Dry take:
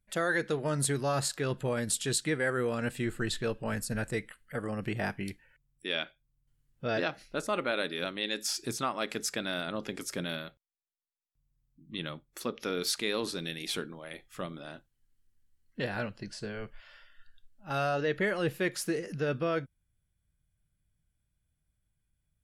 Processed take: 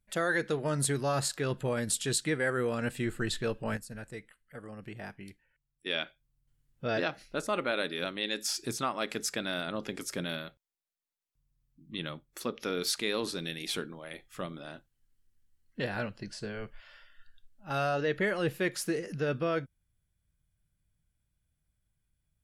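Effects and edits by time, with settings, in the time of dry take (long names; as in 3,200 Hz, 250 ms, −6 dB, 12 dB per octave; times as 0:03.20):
0:03.77–0:05.86: clip gain −10 dB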